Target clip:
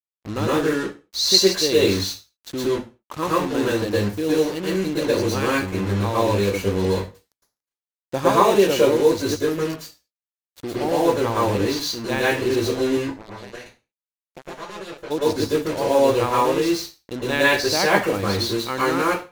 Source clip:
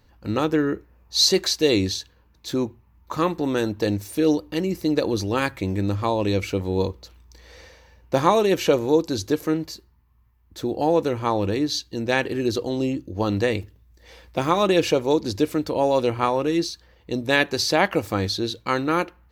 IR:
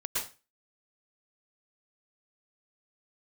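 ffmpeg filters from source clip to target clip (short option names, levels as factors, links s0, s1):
-filter_complex "[0:a]asplit=3[s0][s1][s2];[s0]afade=t=out:st=13:d=0.02[s3];[s1]acompressor=threshold=0.0112:ratio=3,afade=t=in:st=13:d=0.02,afade=t=out:st=15.1:d=0.02[s4];[s2]afade=t=in:st=15.1:d=0.02[s5];[s3][s4][s5]amix=inputs=3:normalize=0,acrusher=bits=4:mix=0:aa=0.5[s6];[1:a]atrim=start_sample=2205,afade=t=out:st=0.41:d=0.01,atrim=end_sample=18522[s7];[s6][s7]afir=irnorm=-1:irlink=0,volume=0.75"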